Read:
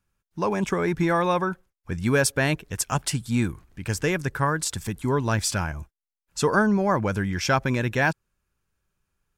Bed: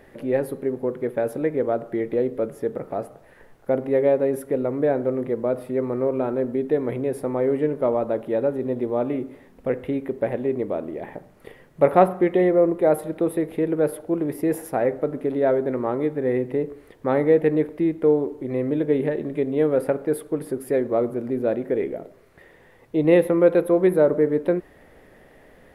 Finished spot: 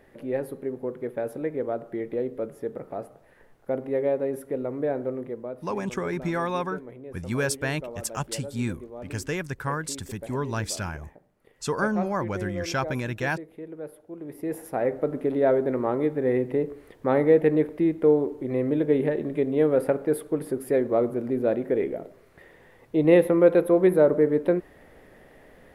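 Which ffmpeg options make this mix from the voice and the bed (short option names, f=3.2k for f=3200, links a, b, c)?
-filter_complex "[0:a]adelay=5250,volume=-5.5dB[a];[1:a]volume=9.5dB,afade=t=out:st=5.06:d=0.6:silence=0.298538,afade=t=in:st=14.15:d=1:silence=0.16788[b];[a][b]amix=inputs=2:normalize=0"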